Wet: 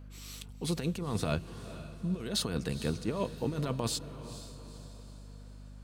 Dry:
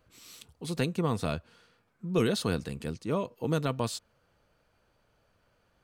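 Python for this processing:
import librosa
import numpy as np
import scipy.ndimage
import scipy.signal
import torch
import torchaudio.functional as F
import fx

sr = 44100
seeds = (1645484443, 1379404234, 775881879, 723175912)

y = fx.over_compress(x, sr, threshold_db=-31.0, ratio=-0.5)
y = fx.echo_diffused(y, sr, ms=465, feedback_pct=47, wet_db=-13)
y = fx.add_hum(y, sr, base_hz=50, snr_db=12)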